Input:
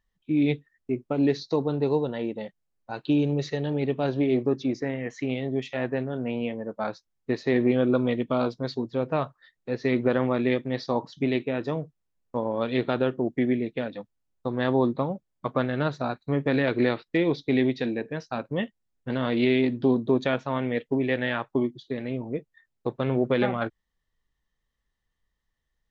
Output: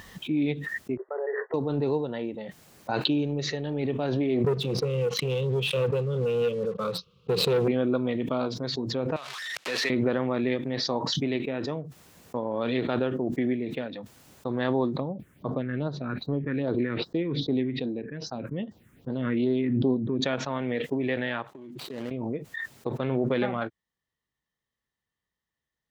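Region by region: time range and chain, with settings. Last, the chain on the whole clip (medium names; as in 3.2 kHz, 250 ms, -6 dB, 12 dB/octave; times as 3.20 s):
0.97–1.54 s: gate -48 dBFS, range -6 dB + brick-wall FIR band-pass 380–2000 Hz + peaking EQ 480 Hz -3.5 dB 2.3 oct
4.44–7.68 s: FFT filter 100 Hz 0 dB, 180 Hz +7 dB, 270 Hz -21 dB, 490 Hz +8 dB, 730 Hz -29 dB, 1.2 kHz +4 dB, 1.8 kHz -30 dB, 2.7 kHz +1 dB, 4.1 kHz -4 dB, 7.9 kHz -28 dB + waveshaping leveller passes 2
9.16–9.90 s: jump at every zero crossing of -34.5 dBFS + band-pass filter 3.4 kHz, Q 0.99 + three bands compressed up and down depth 70%
15.00–20.22 s: treble shelf 2.7 kHz -11.5 dB + phase shifter stages 4, 2.5 Hz, lowest notch 700–2400 Hz
21.47–22.11 s: median filter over 25 samples + bass shelf 330 Hz -7.5 dB + compression 5:1, threshold -41 dBFS
whole clip: high-pass 99 Hz; swell ahead of each attack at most 23 dB/s; trim -3.5 dB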